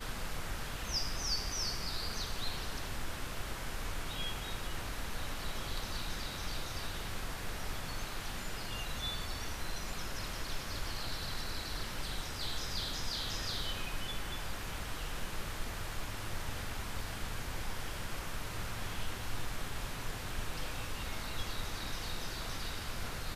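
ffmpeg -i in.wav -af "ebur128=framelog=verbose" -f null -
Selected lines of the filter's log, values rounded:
Integrated loudness:
  I:         -39.6 LUFS
  Threshold: -49.6 LUFS
Loudness range:
  LRA:         3.3 LU
  Threshold: -59.8 LUFS
  LRA low:   -41.2 LUFS
  LRA high:  -37.9 LUFS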